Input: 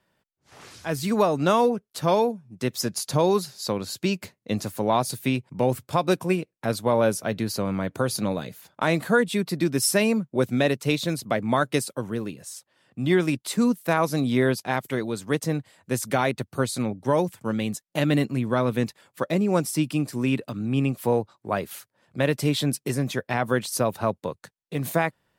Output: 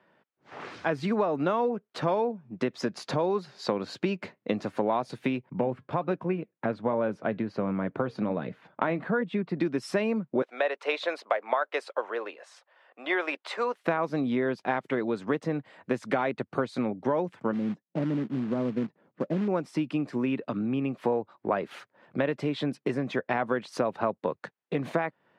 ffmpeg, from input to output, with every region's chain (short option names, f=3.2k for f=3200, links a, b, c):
-filter_complex "[0:a]asettb=1/sr,asplit=3[a][b][c];[a]atrim=end=5.464[d];[b]atrim=start=5.46:end=9.57,asetpts=PTS-STARTPTS,afade=t=in:d=0.004:c=qsin,afade=t=out:st=4.106:d=0.004:c=qsin,bass=f=250:g=5,treble=f=4k:g=-11,flanger=delay=0.6:depth=2.7:regen=-84:speed=1.3:shape=sinusoidal[e];[c]atrim=start=9.566[f];[d][e]acrossfade=d=0.004:c1=hsin:c2=qsin[g];[g][f]acrossfade=d=0.004:c1=qsin:c2=hsin,asettb=1/sr,asplit=3[h][i][j];[h]atrim=end=10.424[k];[i]atrim=start=10.42:end=13.84,asetpts=PTS-STARTPTS,afade=t=in:d=0.004:c=qsin,afade=t=out:st=3.416:d=0.004:c=qsin,highpass=f=540:w=0.5412,highpass=f=540:w=1.3066,highshelf=f=4.3k:g=-6.5[l];[j]atrim=start=13.836[m];[k][l]acrossfade=d=0.004:c1=hsin:c2=qsin[n];[n][m]acrossfade=d=0.004:c1=qsin:c2=hsin,asettb=1/sr,asplit=3[o][p][q];[o]atrim=end=17.534[r];[p]atrim=start=17.53:end=19.48,asetpts=PTS-STARTPTS,afade=t=in:d=0.004:c=qsin,afade=t=out:st=1.946:d=0.004:c=qsin,bandpass=f=180:t=q:w=1.1,acrusher=bits=4:mode=log:mix=0:aa=0.000001[s];[q]atrim=start=19.476[t];[r][s]acrossfade=d=0.004:c1=hsin:c2=qsin[u];[u][t]acrossfade=d=0.004:c1=qsin:c2=hsin,lowpass=2.2k,acompressor=threshold=-31dB:ratio=6,highpass=210,volume=8dB"